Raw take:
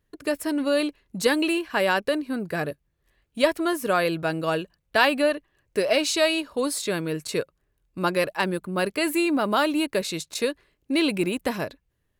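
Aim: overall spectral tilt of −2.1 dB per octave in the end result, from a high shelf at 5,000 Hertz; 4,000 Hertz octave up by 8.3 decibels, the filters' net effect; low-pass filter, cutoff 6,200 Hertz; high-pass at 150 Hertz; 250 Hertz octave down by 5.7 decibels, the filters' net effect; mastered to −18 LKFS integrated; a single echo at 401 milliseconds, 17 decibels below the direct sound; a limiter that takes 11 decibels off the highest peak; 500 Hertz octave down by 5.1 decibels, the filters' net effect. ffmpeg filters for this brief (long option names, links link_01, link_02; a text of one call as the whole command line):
ffmpeg -i in.wav -af "highpass=150,lowpass=6200,equalizer=frequency=250:width_type=o:gain=-5,equalizer=frequency=500:width_type=o:gain=-5.5,equalizer=frequency=4000:width_type=o:gain=7.5,highshelf=frequency=5000:gain=8,alimiter=limit=-12dB:level=0:latency=1,aecho=1:1:401:0.141,volume=7.5dB" out.wav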